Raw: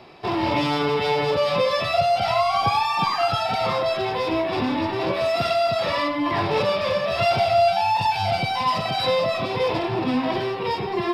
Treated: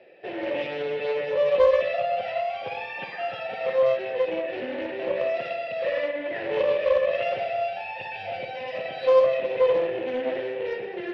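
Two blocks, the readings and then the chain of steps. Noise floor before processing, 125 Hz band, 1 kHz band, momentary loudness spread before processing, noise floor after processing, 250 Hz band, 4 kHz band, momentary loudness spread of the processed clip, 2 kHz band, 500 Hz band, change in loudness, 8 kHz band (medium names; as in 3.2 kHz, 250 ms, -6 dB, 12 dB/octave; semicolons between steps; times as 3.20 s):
-27 dBFS, -19.0 dB, -11.0 dB, 4 LU, -36 dBFS, -11.5 dB, -13.0 dB, 13 LU, -5.0 dB, -0.5 dB, -4.0 dB, no reading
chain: vowel filter e; tone controls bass +1 dB, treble -8 dB; spring tank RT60 1.3 s, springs 53/59 ms, chirp 60 ms, DRR 5.5 dB; loudspeaker Doppler distortion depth 0.18 ms; trim +5.5 dB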